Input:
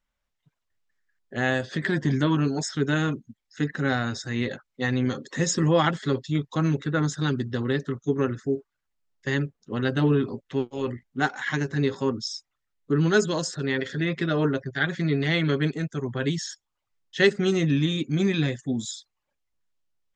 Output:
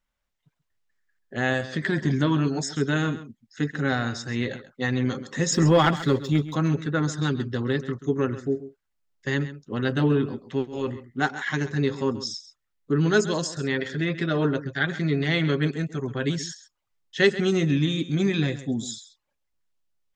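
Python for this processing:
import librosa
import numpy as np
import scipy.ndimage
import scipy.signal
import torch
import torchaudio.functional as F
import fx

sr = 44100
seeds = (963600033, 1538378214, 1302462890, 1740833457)

y = fx.leveller(x, sr, passes=1, at=(5.52, 6.56))
y = y + 10.0 ** (-14.5 / 20.0) * np.pad(y, (int(133 * sr / 1000.0), 0))[:len(y)]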